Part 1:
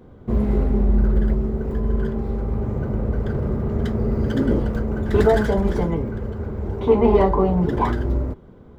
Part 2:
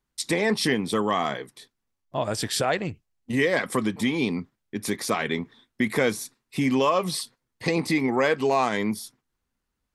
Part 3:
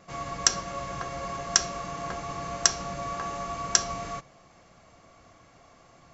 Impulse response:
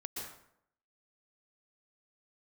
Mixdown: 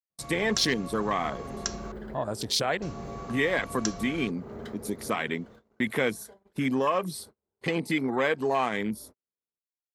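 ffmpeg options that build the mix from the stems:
-filter_complex "[0:a]highpass=f=580:p=1,acompressor=threshold=0.0355:ratio=8,adelay=800,volume=0.501,afade=t=out:st=5.18:d=0.36:silence=0.281838[s0];[1:a]afwtdn=0.0316,highpass=50,aemphasis=mode=production:type=75fm,volume=0.668,asplit=2[s1][s2];[2:a]lowshelf=f=450:g=9.5,adelay=100,volume=0.282,asplit=3[s3][s4][s5];[s3]atrim=end=1.92,asetpts=PTS-STARTPTS,afade=t=out:st=1.916:d=0.004:c=hsin[s6];[s4]atrim=start=1.92:end=2.82,asetpts=PTS-STARTPTS,volume=0[s7];[s5]atrim=start=2.82,asetpts=PTS-STARTPTS,afade=t=in:d=0.004:c=hsin[s8];[s6][s7][s8]concat=n=3:v=0:a=1[s9];[s2]apad=whole_len=422652[s10];[s0][s10]sidechaincompress=threshold=0.0141:ratio=8:attack=34:release=225[s11];[s11][s1][s9]amix=inputs=3:normalize=0,agate=range=0.0178:threshold=0.00447:ratio=16:detection=peak,equalizer=f=4100:w=7.5:g=4"

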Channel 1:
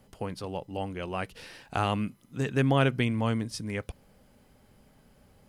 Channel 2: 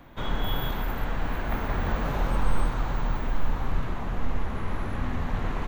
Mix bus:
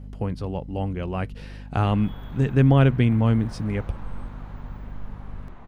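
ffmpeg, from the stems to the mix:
-filter_complex "[0:a]lowpass=f=3100:p=1,lowshelf=f=260:g=11.5,aeval=exprs='val(0)+0.0126*(sin(2*PI*50*n/s)+sin(2*PI*2*50*n/s)/2+sin(2*PI*3*50*n/s)/3+sin(2*PI*4*50*n/s)/4+sin(2*PI*5*50*n/s)/5)':c=same,volume=1.12[s0];[1:a]lowpass=f=3000:p=1,adelay=1600,volume=0.237[s1];[s0][s1]amix=inputs=2:normalize=0"

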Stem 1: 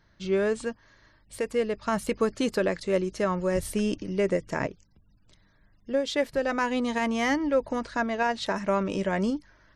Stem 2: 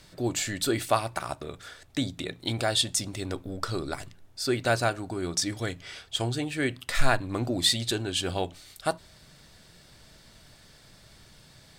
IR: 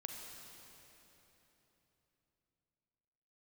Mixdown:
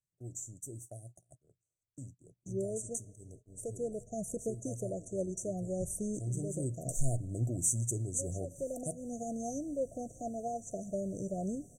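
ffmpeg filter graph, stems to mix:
-filter_complex "[0:a]equalizer=f=850:t=o:w=0.66:g=15,adelay=2250,volume=0.266,asplit=2[s0][s1];[s1]volume=0.141[s2];[1:a]volume=0.335,afade=t=in:st=6.18:d=0.27:silence=0.266073,asplit=3[s3][s4][s5];[s4]volume=0.0891[s6];[s5]apad=whole_len=529230[s7];[s0][s7]sidechaincompress=threshold=0.00562:ratio=8:attack=22:release=213[s8];[2:a]atrim=start_sample=2205[s9];[s2][s6]amix=inputs=2:normalize=0[s10];[s10][s9]afir=irnorm=-1:irlink=0[s11];[s8][s3][s11]amix=inputs=3:normalize=0,afftfilt=real='re*(1-between(b*sr/4096,750,5800))':imag='im*(1-between(b*sr/4096,750,5800))':win_size=4096:overlap=0.75,agate=range=0.0631:threshold=0.00178:ratio=16:detection=peak,equalizer=f=125:t=o:w=1:g=11,equalizer=f=250:t=o:w=1:g=-3,equalizer=f=1000:t=o:w=1:g=-12,equalizer=f=4000:t=o:w=1:g=3,equalizer=f=8000:t=o:w=1:g=11"

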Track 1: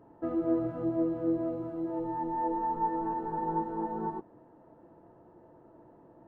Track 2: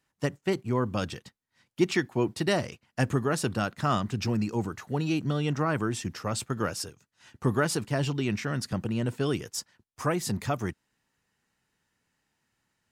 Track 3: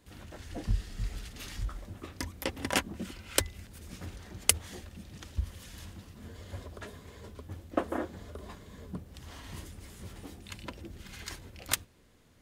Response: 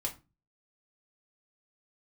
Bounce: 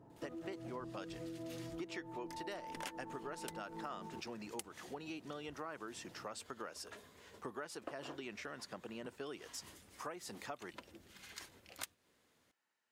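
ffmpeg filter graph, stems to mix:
-filter_complex "[0:a]equalizer=f=130:t=o:w=1.1:g=8,acompressor=threshold=0.02:ratio=6,volume=0.531[s0];[1:a]highpass=410,highshelf=f=5200:g=-6.5,volume=0.447,asplit=2[s1][s2];[2:a]highpass=f=420:p=1,adelay=100,volume=0.447[s3];[s2]apad=whole_len=551880[s4];[s3][s4]sidechaincompress=threshold=0.00891:ratio=8:attack=16:release=161[s5];[s0][s1][s5]amix=inputs=3:normalize=0,acompressor=threshold=0.00708:ratio=4"

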